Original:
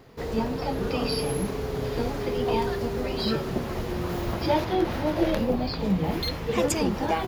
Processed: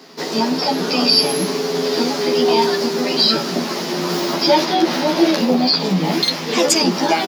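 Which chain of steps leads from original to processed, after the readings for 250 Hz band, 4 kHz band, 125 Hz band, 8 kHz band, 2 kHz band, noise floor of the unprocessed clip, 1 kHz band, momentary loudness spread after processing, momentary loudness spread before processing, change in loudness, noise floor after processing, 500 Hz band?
+9.0 dB, +18.0 dB, +2.0 dB, +14.0 dB, +11.0 dB, −32 dBFS, +10.0 dB, 6 LU, 5 LU, +10.5 dB, −25 dBFS, +8.5 dB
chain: Butterworth high-pass 180 Hz 36 dB per octave
parametric band 5,100 Hz +13 dB 0.98 octaves
notch filter 490 Hz, Q 12
in parallel at −0.5 dB: brickwall limiter −17.5 dBFS, peak gain reduction 10 dB
on the sum: double-tracking delay 12 ms −2 dB
level +2 dB

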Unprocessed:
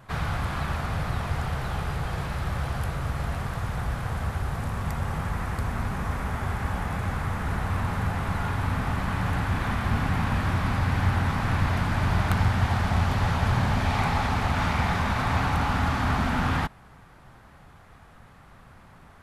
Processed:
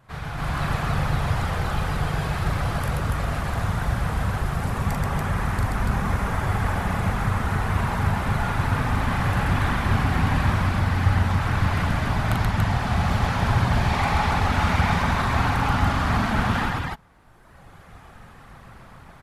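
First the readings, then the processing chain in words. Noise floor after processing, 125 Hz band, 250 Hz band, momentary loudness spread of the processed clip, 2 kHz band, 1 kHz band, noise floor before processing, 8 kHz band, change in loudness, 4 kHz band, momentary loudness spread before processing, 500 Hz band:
−48 dBFS, +3.5 dB, +3.5 dB, 5 LU, +3.5 dB, +3.5 dB, −51 dBFS, +4.0 dB, +3.5 dB, +3.5 dB, 6 LU, +4.0 dB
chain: reverb reduction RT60 1.8 s
on a send: loudspeakers that aren't time-aligned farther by 14 metres −4 dB, 45 metres −2 dB, 98 metres −2 dB
on the sum: automatic gain control gain up to 11.5 dB
level −6.5 dB

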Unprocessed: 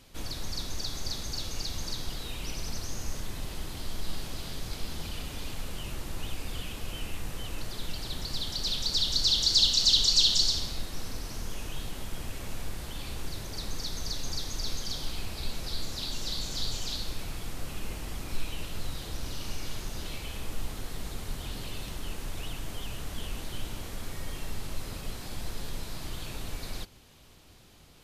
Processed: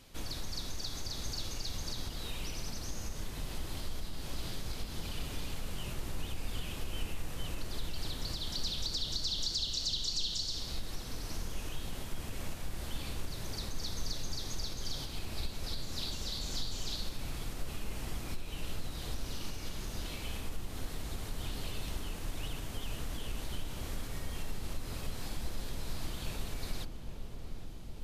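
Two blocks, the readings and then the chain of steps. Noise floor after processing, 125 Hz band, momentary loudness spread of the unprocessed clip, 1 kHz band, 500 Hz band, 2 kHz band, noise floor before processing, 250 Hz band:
−42 dBFS, −2.0 dB, 16 LU, −3.5 dB, −3.0 dB, −4.0 dB, −42 dBFS, −2.5 dB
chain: downward compressor 6 to 1, threshold −31 dBFS, peak gain reduction 13 dB
on a send: feedback echo with a low-pass in the loop 811 ms, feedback 81%, low-pass 890 Hz, level −7.5 dB
on the sum: level −1.5 dB

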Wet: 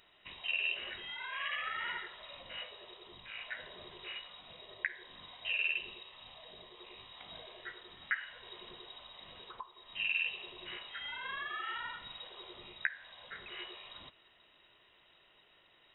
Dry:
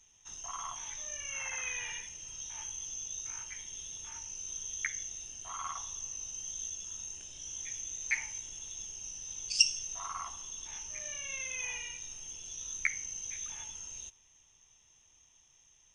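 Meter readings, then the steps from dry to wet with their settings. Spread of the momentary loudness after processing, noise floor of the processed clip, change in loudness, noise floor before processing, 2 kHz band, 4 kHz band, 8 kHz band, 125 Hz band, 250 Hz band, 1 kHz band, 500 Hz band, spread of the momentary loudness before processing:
18 LU, −66 dBFS, −2.5 dB, −65 dBFS, +3.0 dB, −2.0 dB, below −40 dB, −5.0 dB, can't be measured, 0.0 dB, +5.0 dB, 8 LU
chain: downward compressor 4 to 1, threshold −42 dBFS, peak gain reduction 20 dB
flat-topped bell 1,000 Hz +9.5 dB 2.3 octaves
voice inversion scrambler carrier 3,800 Hz
level +3.5 dB

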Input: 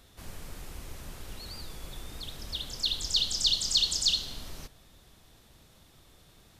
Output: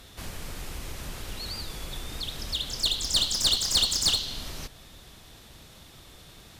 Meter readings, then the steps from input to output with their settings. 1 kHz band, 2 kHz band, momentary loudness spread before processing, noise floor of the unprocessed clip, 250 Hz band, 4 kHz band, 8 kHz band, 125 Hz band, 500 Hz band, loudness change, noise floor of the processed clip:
+8.0 dB, +6.0 dB, 21 LU, −59 dBFS, +6.0 dB, +2.5 dB, +4.5 dB, +5.5 dB, +6.5 dB, +1.0 dB, −51 dBFS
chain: parametric band 3,200 Hz +3 dB 2.2 octaves
in parallel at 0 dB: downward compressor, threshold −42 dBFS, peak gain reduction 22 dB
on the sum: asymmetric clip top −27.5 dBFS
level +1.5 dB

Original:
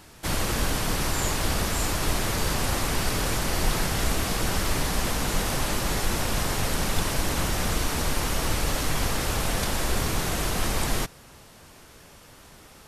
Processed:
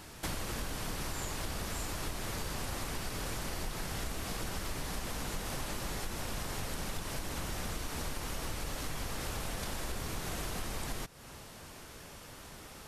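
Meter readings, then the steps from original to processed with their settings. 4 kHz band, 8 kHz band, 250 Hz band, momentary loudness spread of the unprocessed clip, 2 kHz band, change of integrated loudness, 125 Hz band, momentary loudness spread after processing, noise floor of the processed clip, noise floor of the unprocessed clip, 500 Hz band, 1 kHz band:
−12.0 dB, −12.0 dB, −12.0 dB, 1 LU, −12.0 dB, −12.5 dB, −12.0 dB, 11 LU, −50 dBFS, −50 dBFS, −12.0 dB, −12.0 dB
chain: downward compressor, threshold −35 dBFS, peak gain reduction 16.5 dB

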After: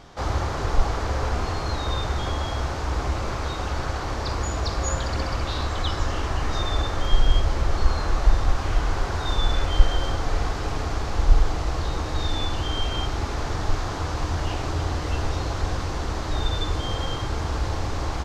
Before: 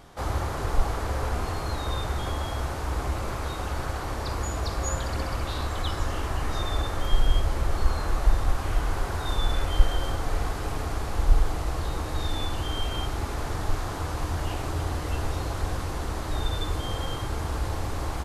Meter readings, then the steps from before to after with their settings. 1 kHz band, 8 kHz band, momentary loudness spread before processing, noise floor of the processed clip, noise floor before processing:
+3.0 dB, +2.0 dB, 5 LU, −29 dBFS, −32 dBFS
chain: high shelf with overshoot 8,000 Hz −11 dB, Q 1.5
level +3 dB

